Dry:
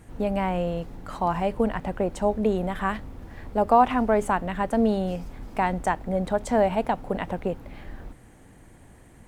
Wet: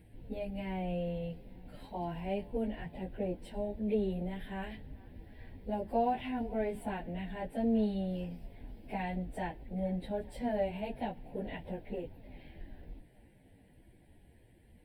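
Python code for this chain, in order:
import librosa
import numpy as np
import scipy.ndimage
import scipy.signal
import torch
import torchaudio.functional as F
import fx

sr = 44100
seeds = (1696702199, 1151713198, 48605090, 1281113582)

y = fx.fixed_phaser(x, sr, hz=2900.0, stages=4)
y = fx.stretch_vocoder_free(y, sr, factor=1.6)
y = fx.echo_wet_bandpass(y, sr, ms=428, feedback_pct=66, hz=1300.0, wet_db=-22.0)
y = y * 10.0 ** (-6.5 / 20.0)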